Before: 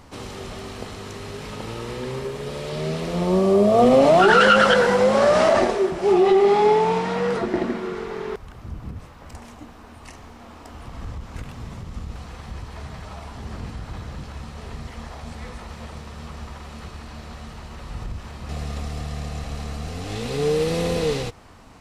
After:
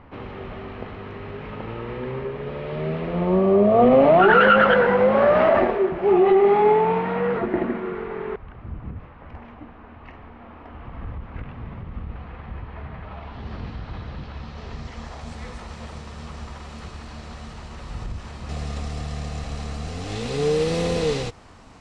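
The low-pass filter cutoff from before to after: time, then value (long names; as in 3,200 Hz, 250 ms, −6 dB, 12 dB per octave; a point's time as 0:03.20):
low-pass filter 24 dB per octave
0:13.01 2,600 Hz
0:13.50 4,300 Hz
0:14.29 4,300 Hz
0:15.28 9,100 Hz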